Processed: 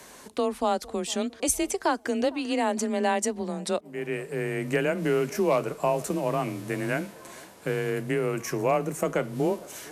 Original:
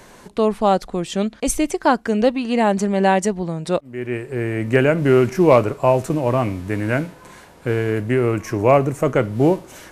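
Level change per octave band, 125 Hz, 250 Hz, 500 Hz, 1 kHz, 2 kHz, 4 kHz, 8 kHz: -12.5, -9.5, -9.0, -8.5, -6.5, -3.5, -1.0 dB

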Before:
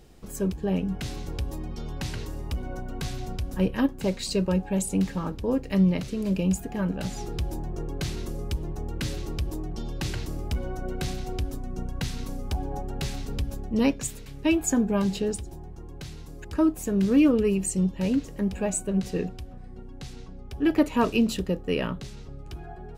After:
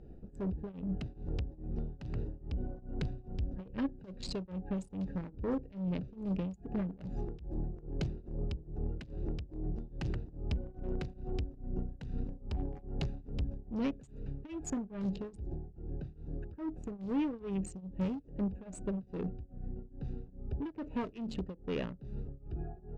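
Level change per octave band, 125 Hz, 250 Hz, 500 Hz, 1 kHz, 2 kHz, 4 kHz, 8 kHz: -8.5, -12.0, -13.0, -13.0, -15.5, -15.0, -20.5 dB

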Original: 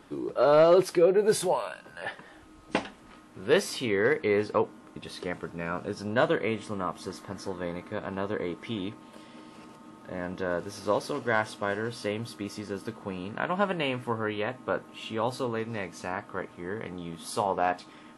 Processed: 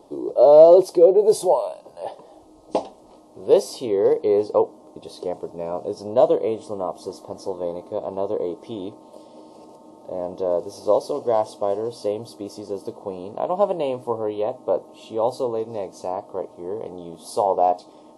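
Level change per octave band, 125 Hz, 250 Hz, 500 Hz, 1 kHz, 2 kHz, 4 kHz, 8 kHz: -3.0 dB, +3.0 dB, +9.0 dB, +6.0 dB, under -15 dB, -2.5 dB, n/a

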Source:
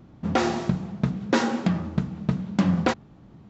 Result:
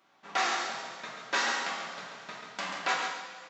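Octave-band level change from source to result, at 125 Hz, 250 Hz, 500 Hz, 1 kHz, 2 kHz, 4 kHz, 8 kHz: -33.0 dB, -25.0 dB, -11.5 dB, -2.0 dB, +2.0 dB, +2.5 dB, n/a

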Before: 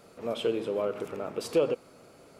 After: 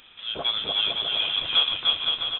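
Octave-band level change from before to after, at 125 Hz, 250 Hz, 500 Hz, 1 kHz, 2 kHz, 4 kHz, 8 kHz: -3.0 dB, -11.0 dB, -12.0 dB, +5.5 dB, +13.0 dB, +25.0 dB, under -30 dB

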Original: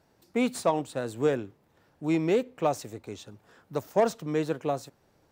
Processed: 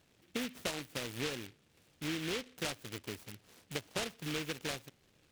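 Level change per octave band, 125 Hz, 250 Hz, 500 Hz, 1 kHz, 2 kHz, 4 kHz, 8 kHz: -9.0, -12.0, -15.5, -15.0, -1.5, +4.0, -1.0 dB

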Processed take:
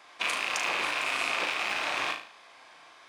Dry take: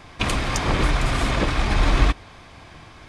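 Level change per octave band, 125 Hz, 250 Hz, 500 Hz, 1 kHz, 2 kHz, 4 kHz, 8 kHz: under -35 dB, -20.5 dB, -10.5 dB, -6.0 dB, -1.5 dB, -3.0 dB, -5.0 dB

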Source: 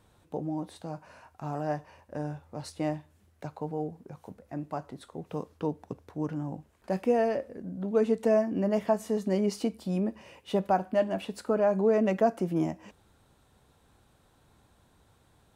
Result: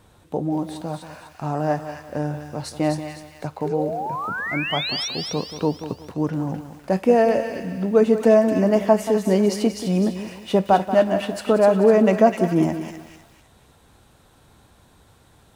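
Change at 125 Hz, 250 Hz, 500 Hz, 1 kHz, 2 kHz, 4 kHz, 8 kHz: +9.0, +9.5, +9.5, +9.5, +13.5, +18.0, +12.5 dB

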